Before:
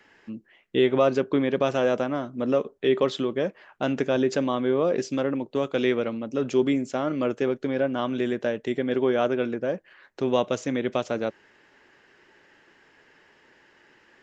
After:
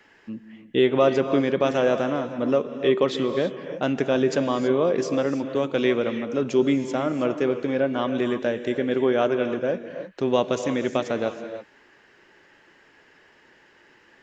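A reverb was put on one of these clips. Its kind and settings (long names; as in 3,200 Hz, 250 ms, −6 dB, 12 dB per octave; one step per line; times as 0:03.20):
reverb whose tail is shaped and stops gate 350 ms rising, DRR 8.5 dB
level +1.5 dB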